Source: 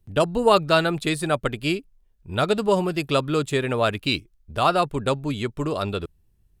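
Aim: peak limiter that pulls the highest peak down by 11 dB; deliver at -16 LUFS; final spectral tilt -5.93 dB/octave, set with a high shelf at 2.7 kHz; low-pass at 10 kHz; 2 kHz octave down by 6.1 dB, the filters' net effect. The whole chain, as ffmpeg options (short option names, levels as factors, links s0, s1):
-af "lowpass=10000,equalizer=f=2000:t=o:g=-6,highshelf=f=2700:g=-6.5,volume=4.22,alimiter=limit=0.562:level=0:latency=1"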